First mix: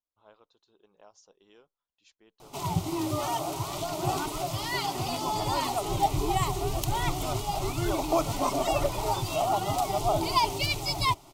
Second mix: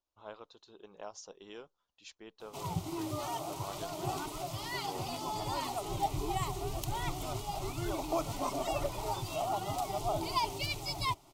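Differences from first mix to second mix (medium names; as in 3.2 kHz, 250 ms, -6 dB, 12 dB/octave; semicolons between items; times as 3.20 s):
speech +10.0 dB; background -7.5 dB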